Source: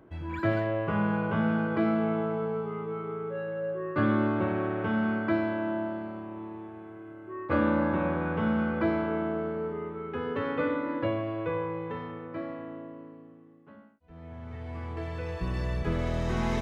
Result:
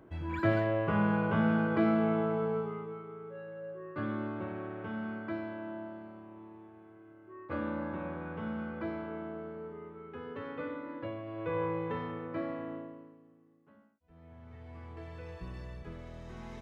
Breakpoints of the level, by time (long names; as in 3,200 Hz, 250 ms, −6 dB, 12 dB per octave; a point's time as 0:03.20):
0:02.58 −1 dB
0:03.07 −10.5 dB
0:11.23 −10.5 dB
0:11.64 0 dB
0:12.75 0 dB
0:13.19 −10 dB
0:15.32 −10 dB
0:16.03 −17 dB